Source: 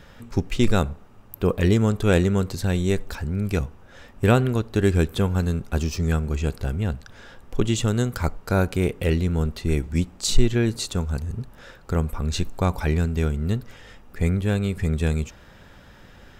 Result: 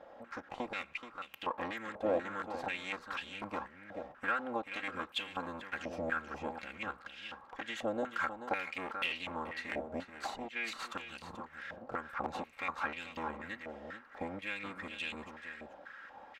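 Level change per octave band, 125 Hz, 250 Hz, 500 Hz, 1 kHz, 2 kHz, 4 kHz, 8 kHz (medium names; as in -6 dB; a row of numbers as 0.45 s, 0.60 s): -34.0 dB, -20.5 dB, -14.5 dB, -5.0 dB, -4.5 dB, -10.5 dB, -23.0 dB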